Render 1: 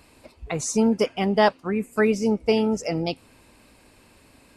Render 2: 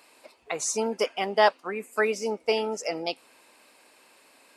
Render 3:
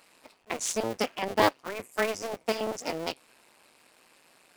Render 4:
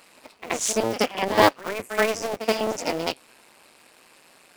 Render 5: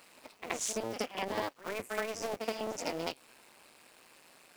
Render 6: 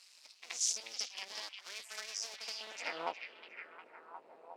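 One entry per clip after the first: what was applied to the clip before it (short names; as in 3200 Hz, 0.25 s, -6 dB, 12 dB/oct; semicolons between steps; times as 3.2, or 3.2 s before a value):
HPF 500 Hz 12 dB/oct
cycle switcher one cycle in 2, muted
pre-echo 77 ms -12 dB; gain +6 dB
compressor 12:1, threshold -25 dBFS, peak gain reduction 16 dB; bit-crush 10-bit; gain -5.5 dB
band-pass sweep 5300 Hz -> 450 Hz, 2.54–3.34; delay with a stepping band-pass 0.359 s, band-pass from 3000 Hz, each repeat -0.7 oct, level -3.5 dB; gain +7 dB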